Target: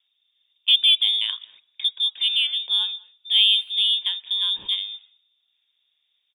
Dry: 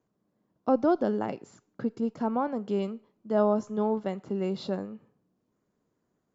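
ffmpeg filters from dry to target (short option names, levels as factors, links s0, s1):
-filter_complex "[0:a]lowpass=f=3200:t=q:w=0.5098,lowpass=f=3200:t=q:w=0.6013,lowpass=f=3200:t=q:w=0.9,lowpass=f=3200:t=q:w=2.563,afreqshift=-3800,asplit=2[s0][s1];[s1]adelay=200,highpass=300,lowpass=3400,asoftclip=type=hard:threshold=0.0944,volume=0.0708[s2];[s0][s2]amix=inputs=2:normalize=0,aeval=exprs='0.237*(cos(1*acos(clip(val(0)/0.237,-1,1)))-cos(1*PI/2))+0.00168*(cos(3*acos(clip(val(0)/0.237,-1,1)))-cos(3*PI/2))+0.00335*(cos(7*acos(clip(val(0)/0.237,-1,1)))-cos(7*PI/2))':c=same,volume=2.11"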